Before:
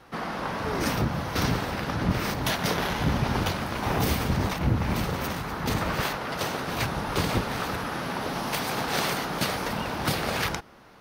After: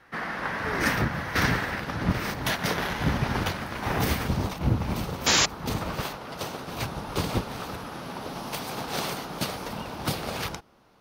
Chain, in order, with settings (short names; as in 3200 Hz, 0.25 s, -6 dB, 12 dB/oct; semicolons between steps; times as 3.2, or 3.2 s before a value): bell 1800 Hz +11 dB 0.74 oct, from 1.78 s +4 dB, from 4.28 s -5 dB; 5.26–5.46 painted sound noise 220–7400 Hz -21 dBFS; upward expander 1.5:1, over -36 dBFS; gain +1 dB